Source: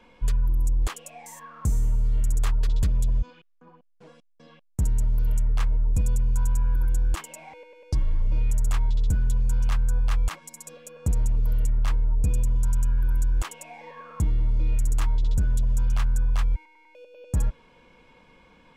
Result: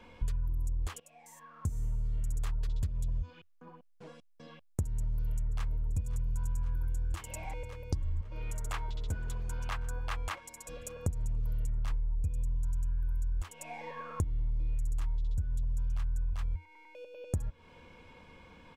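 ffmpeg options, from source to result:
ffmpeg -i in.wav -filter_complex "[0:a]asplit=2[link_01][link_02];[link_02]afade=type=in:start_time=4.98:duration=0.01,afade=type=out:start_time=5.86:duration=0.01,aecho=0:1:530|1060|1590|2120|2650|3180|3710|4240|4770|5300|5830|6360:0.188365|0.16011|0.136094|0.11568|0.0983277|0.0835785|0.0710417|0.0603855|0.0513277|0.0436285|0.0370842|0.0315216[link_03];[link_01][link_03]amix=inputs=2:normalize=0,asettb=1/sr,asplit=3[link_04][link_05][link_06];[link_04]atrim=end=8.214[link_07];[link_05]atrim=start=8.21:end=10.69,asetpts=PTS-STARTPTS,afade=type=in:duration=0.004:curve=qsin,afade=type=out:start_time=2.476:duration=0.004:curve=qsin,bass=frequency=250:gain=-15,treble=frequency=4000:gain=-7[link_08];[link_06]atrim=start=10.686[link_09];[link_07][link_08]acrossfade=duration=0.004:curve1=hsin:curve2=qsin[link_10];[link_10][link_09]acrossfade=duration=0.004:curve1=qsin:curve2=hsin,asettb=1/sr,asplit=3[link_11][link_12][link_13];[link_11]atrim=end=11.924[link_14];[link_12]atrim=start=11.92:end=16.33,asetpts=PTS-STARTPTS,afade=type=in:duration=0.004:curve=qsin,afade=type=out:start_time=4.406:duration=0.004:curve=qsin,lowshelf=frequency=66:gain=7.5[link_15];[link_13]atrim=start=16.326[link_16];[link_14][link_15]acrossfade=duration=0.004:curve1=hsin:curve2=qsin[link_17];[link_17][link_16]acrossfade=duration=0.004:curve1=qsin:curve2=hsin,asplit=2[link_18][link_19];[link_18]atrim=end=1,asetpts=PTS-STARTPTS,afade=type=out:start_time=0.996:duration=0.004:curve=hsin:silence=0.141254[link_20];[link_19]atrim=start=1,asetpts=PTS-STARTPTS,afade=type=in:duration=2.06:silence=0.141254[link_21];[link_20][link_21]concat=n=2:v=0:a=1,equalizer=frequency=85:width=2.8:gain=12.5,acompressor=threshold=-29dB:ratio=12" out.wav

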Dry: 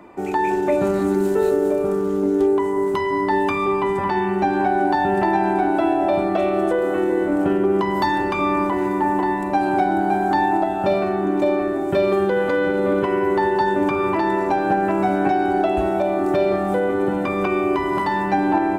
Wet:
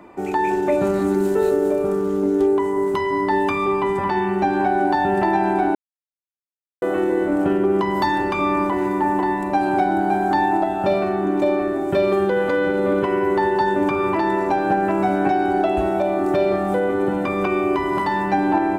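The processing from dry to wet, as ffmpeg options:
ffmpeg -i in.wav -filter_complex "[0:a]asplit=3[link_01][link_02][link_03];[link_01]atrim=end=5.75,asetpts=PTS-STARTPTS,afade=type=out:start_time=5.746:duration=0.004:curve=hsin[link_04];[link_02]atrim=start=5.75:end=6.82,asetpts=PTS-STARTPTS,volume=0[link_05];[link_03]atrim=start=6.82,asetpts=PTS-STARTPTS,afade=type=in:duration=0.004:curve=hsin[link_06];[link_04][link_05][link_06]concat=n=3:v=0:a=1" out.wav

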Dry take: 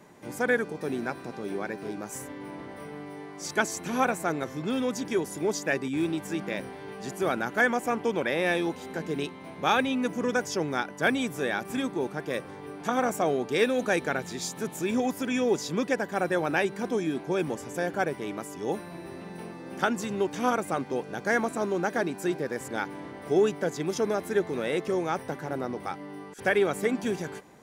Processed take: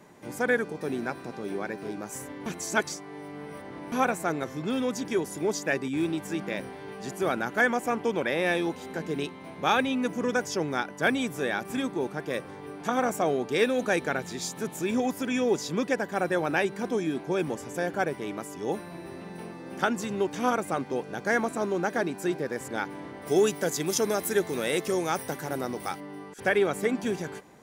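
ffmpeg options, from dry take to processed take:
ffmpeg -i in.wav -filter_complex "[0:a]asplit=3[link_01][link_02][link_03];[link_01]afade=type=out:start_time=23.26:duration=0.02[link_04];[link_02]aemphasis=mode=production:type=75kf,afade=type=in:start_time=23.26:duration=0.02,afade=type=out:start_time=25.99:duration=0.02[link_05];[link_03]afade=type=in:start_time=25.99:duration=0.02[link_06];[link_04][link_05][link_06]amix=inputs=3:normalize=0,asplit=3[link_07][link_08][link_09];[link_07]atrim=end=2.462[link_10];[link_08]atrim=start=2.458:end=3.922,asetpts=PTS-STARTPTS,areverse[link_11];[link_09]atrim=start=3.918[link_12];[link_10][link_11]acrossfade=duration=0.004:curve1=hsin:curve2=hsin[link_13];[link_13][link_12]acrossfade=duration=0.004:curve1=hsin:curve2=hsin" out.wav

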